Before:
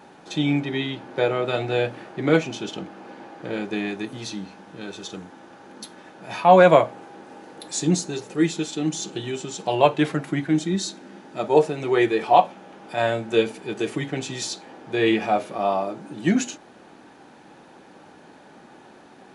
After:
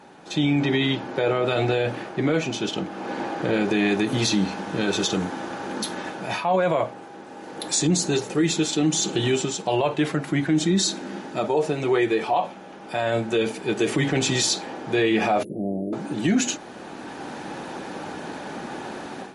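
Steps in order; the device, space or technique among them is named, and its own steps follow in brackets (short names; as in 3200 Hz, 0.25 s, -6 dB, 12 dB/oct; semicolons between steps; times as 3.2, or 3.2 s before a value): 15.43–15.93 inverse Chebyshev band-stop 1100–5700 Hz, stop band 60 dB; low-bitrate web radio (AGC gain up to 14.5 dB; limiter -12.5 dBFS, peak gain reduction 11.5 dB; MP3 48 kbps 44100 Hz)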